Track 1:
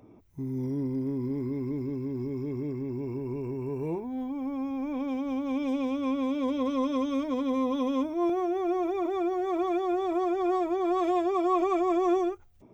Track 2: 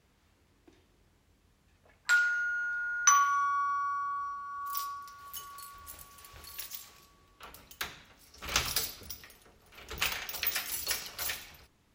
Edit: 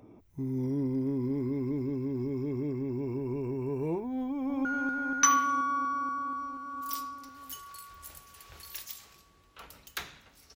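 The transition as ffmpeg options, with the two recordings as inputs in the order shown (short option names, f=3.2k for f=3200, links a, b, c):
-filter_complex "[0:a]apad=whole_dur=10.55,atrim=end=10.55,atrim=end=4.652[a];[1:a]atrim=start=2.488:end=8.39[b];[a][b]acrossfade=d=0.004:c1=hsin:c2=hsin,asplit=2[c][d];[d]afade=t=in:st=4.25:d=0.01,afade=t=out:st=4.65:d=0.01,aecho=0:1:240|480|720|960|1200|1440|1680|1920|2160|2400|2640|2880:0.630957|0.504766|0.403813|0.32305|0.25844|0.206752|0.165402|0.132321|0.105857|0.0846857|0.0677485|0.0541988[e];[c][e]amix=inputs=2:normalize=0"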